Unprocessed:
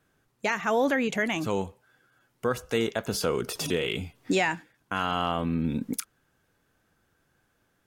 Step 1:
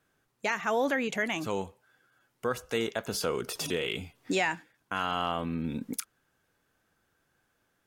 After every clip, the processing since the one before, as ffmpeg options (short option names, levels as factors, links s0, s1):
-af "lowshelf=f=320:g=-5,volume=0.794"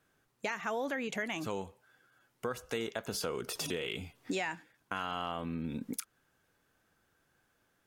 -af "acompressor=threshold=0.0178:ratio=2.5"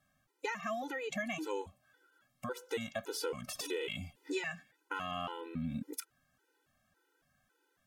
-af "afftfilt=real='re*gt(sin(2*PI*1.8*pts/sr)*(1-2*mod(floor(b*sr/1024/260),2)),0)':imag='im*gt(sin(2*PI*1.8*pts/sr)*(1-2*mod(floor(b*sr/1024/260),2)),0)':win_size=1024:overlap=0.75,volume=1.12"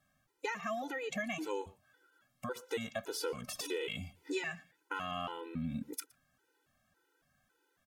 -filter_complex "[0:a]asplit=2[s0][s1];[s1]adelay=116.6,volume=0.0708,highshelf=f=4000:g=-2.62[s2];[s0][s2]amix=inputs=2:normalize=0"